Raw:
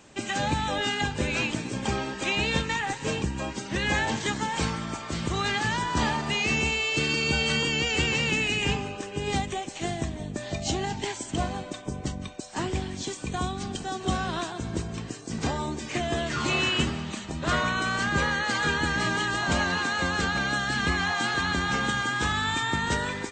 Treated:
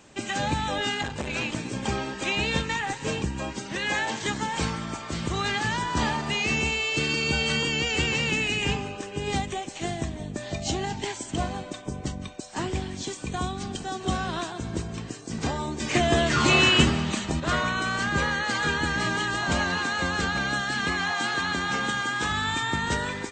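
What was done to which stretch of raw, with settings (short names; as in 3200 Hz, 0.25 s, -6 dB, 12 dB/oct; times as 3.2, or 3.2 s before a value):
0.97–1.55 core saturation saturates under 820 Hz
3.72–4.22 HPF 350 Hz 6 dB/oct
15.8–17.4 gain +6.5 dB
20.61–22.3 HPF 170 Hz 6 dB/oct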